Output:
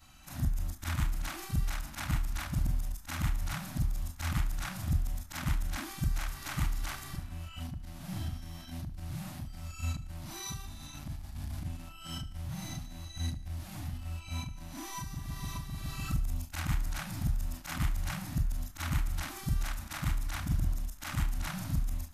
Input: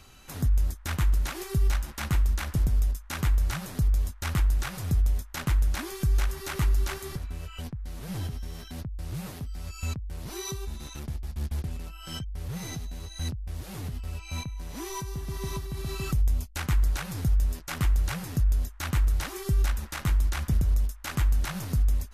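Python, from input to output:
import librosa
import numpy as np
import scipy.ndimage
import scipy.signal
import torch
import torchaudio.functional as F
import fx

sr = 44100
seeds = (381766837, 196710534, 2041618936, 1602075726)

y = fx.frame_reverse(x, sr, frame_ms=97.0)
y = scipy.signal.sosfilt(scipy.signal.cheby1(2, 1.0, [310.0, 620.0], 'bandstop', fs=sr, output='sos'), y)
y = fx.echo_feedback(y, sr, ms=75, feedback_pct=55, wet_db=-17.0)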